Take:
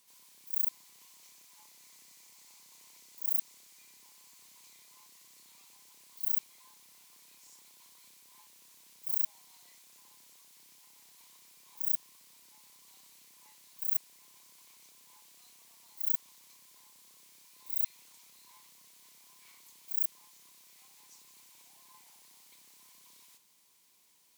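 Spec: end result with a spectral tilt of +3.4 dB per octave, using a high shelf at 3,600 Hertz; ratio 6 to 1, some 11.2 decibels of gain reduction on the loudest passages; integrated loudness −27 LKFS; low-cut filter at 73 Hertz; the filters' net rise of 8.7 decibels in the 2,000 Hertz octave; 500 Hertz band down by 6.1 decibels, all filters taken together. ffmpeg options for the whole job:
ffmpeg -i in.wav -af "highpass=73,equalizer=frequency=500:width_type=o:gain=-9,equalizer=frequency=2000:width_type=o:gain=8.5,highshelf=frequency=3600:gain=7,acompressor=threshold=-30dB:ratio=6,volume=13dB" out.wav

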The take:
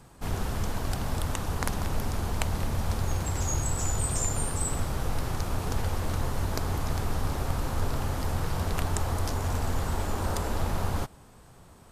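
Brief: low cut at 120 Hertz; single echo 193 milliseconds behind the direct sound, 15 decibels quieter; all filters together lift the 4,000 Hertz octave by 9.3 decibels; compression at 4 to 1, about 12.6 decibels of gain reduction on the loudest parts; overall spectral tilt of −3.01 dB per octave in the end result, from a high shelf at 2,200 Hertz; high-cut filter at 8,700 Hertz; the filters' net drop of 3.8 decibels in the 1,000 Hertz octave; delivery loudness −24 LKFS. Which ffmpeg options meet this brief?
ffmpeg -i in.wav -af "highpass=120,lowpass=8700,equalizer=frequency=1000:width_type=o:gain=-6.5,highshelf=frequency=2200:gain=5.5,equalizer=frequency=4000:width_type=o:gain=7,acompressor=threshold=-40dB:ratio=4,aecho=1:1:193:0.178,volume=16.5dB" out.wav

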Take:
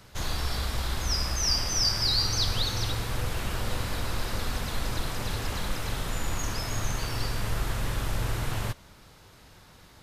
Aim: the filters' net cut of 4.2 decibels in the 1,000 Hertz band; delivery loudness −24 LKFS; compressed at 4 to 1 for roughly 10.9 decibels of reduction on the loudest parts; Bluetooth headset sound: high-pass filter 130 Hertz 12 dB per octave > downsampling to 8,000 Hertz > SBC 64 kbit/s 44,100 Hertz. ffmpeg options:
ffmpeg -i in.wav -af "equalizer=frequency=1000:width_type=o:gain=-5.5,acompressor=threshold=-36dB:ratio=4,highpass=130,aresample=8000,aresample=44100,volume=21.5dB" -ar 44100 -c:a sbc -b:a 64k out.sbc

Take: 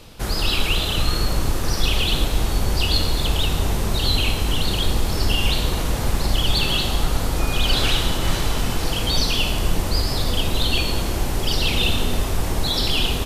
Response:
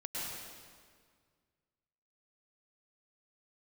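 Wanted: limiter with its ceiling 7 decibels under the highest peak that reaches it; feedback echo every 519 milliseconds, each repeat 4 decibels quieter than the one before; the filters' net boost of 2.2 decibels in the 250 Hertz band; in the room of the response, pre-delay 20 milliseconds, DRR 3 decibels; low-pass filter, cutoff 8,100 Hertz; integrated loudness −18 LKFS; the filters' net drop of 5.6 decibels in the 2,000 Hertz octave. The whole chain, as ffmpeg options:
-filter_complex "[0:a]lowpass=8100,equalizer=frequency=250:width_type=o:gain=3,equalizer=frequency=2000:width_type=o:gain=-8.5,alimiter=limit=-13dB:level=0:latency=1,aecho=1:1:519|1038|1557|2076|2595|3114|3633|4152|4671:0.631|0.398|0.25|0.158|0.0994|0.0626|0.0394|0.0249|0.0157,asplit=2[link_01][link_02];[1:a]atrim=start_sample=2205,adelay=20[link_03];[link_02][link_03]afir=irnorm=-1:irlink=0,volume=-5.5dB[link_04];[link_01][link_04]amix=inputs=2:normalize=0,volume=3dB"

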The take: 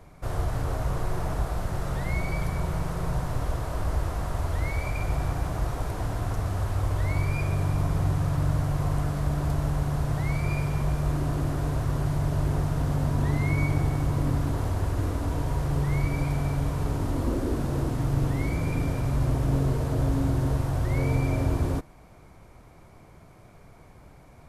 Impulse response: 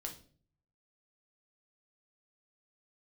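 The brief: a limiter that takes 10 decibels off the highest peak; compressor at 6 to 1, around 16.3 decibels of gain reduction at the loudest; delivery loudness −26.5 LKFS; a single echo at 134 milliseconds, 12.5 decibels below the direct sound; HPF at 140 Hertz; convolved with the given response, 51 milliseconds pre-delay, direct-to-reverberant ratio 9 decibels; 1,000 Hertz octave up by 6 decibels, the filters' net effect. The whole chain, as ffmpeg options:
-filter_complex "[0:a]highpass=140,equalizer=frequency=1000:width_type=o:gain=7.5,acompressor=threshold=-42dB:ratio=6,alimiter=level_in=17.5dB:limit=-24dB:level=0:latency=1,volume=-17.5dB,aecho=1:1:134:0.237,asplit=2[link_01][link_02];[1:a]atrim=start_sample=2205,adelay=51[link_03];[link_02][link_03]afir=irnorm=-1:irlink=0,volume=-7dB[link_04];[link_01][link_04]amix=inputs=2:normalize=0,volume=23dB"

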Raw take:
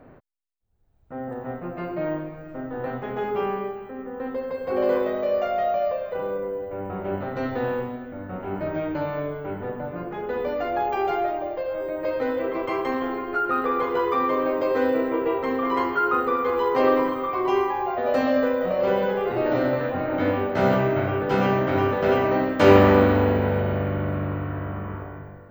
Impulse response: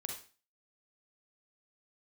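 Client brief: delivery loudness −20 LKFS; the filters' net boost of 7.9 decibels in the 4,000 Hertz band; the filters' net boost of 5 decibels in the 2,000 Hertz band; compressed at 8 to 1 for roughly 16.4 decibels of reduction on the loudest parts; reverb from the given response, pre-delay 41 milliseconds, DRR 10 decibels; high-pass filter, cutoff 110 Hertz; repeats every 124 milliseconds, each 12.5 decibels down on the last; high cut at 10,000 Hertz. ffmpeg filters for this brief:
-filter_complex "[0:a]highpass=110,lowpass=10000,equalizer=frequency=2000:width_type=o:gain=4.5,equalizer=frequency=4000:width_type=o:gain=9,acompressor=threshold=-26dB:ratio=8,aecho=1:1:124|248|372:0.237|0.0569|0.0137,asplit=2[link_01][link_02];[1:a]atrim=start_sample=2205,adelay=41[link_03];[link_02][link_03]afir=irnorm=-1:irlink=0,volume=-9dB[link_04];[link_01][link_04]amix=inputs=2:normalize=0,volume=9.5dB"

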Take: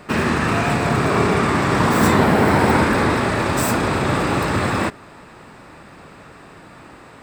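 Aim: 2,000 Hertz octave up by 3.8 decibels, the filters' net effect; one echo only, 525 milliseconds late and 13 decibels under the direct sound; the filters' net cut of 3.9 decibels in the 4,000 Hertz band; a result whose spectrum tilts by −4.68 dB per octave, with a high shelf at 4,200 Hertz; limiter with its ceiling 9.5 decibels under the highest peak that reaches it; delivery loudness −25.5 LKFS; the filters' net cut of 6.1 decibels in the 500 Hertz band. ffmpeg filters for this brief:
ffmpeg -i in.wav -af "equalizer=frequency=500:width_type=o:gain=-8.5,equalizer=frequency=2000:width_type=o:gain=7.5,equalizer=frequency=4000:width_type=o:gain=-4,highshelf=frequency=4200:gain=-7,alimiter=limit=-13dB:level=0:latency=1,aecho=1:1:525:0.224,volume=-4dB" out.wav

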